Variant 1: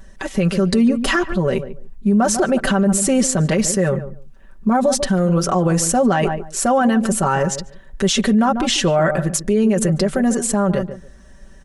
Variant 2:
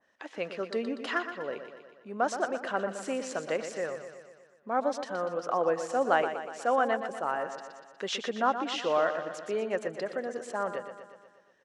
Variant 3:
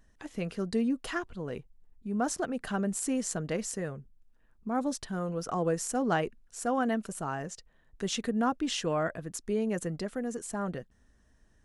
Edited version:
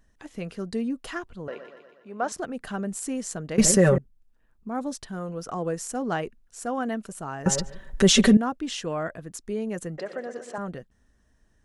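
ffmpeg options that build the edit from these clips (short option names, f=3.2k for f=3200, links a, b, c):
-filter_complex "[1:a]asplit=2[a][b];[0:a]asplit=2[c][d];[2:a]asplit=5[e][f][g][h][i];[e]atrim=end=1.482[j];[a]atrim=start=1.478:end=2.322[k];[f]atrim=start=2.318:end=3.582[l];[c]atrim=start=3.578:end=3.982[m];[g]atrim=start=3.978:end=7.462[n];[d]atrim=start=7.458:end=8.372[o];[h]atrim=start=8.368:end=9.982[p];[b]atrim=start=9.978:end=10.582[q];[i]atrim=start=10.578[r];[j][k]acrossfade=d=0.004:c1=hsin:c2=hsin[s];[s][l]acrossfade=d=0.004:c1=hsin:c2=hsin[t];[t][m]acrossfade=d=0.004:c1=hsin:c2=hsin[u];[u][n]acrossfade=d=0.004:c1=hsin:c2=hsin[v];[v][o]acrossfade=d=0.004:c1=hsin:c2=hsin[w];[w][p]acrossfade=d=0.004:c1=hsin:c2=hsin[x];[x][q]acrossfade=d=0.004:c1=hsin:c2=hsin[y];[y][r]acrossfade=d=0.004:c1=hsin:c2=hsin"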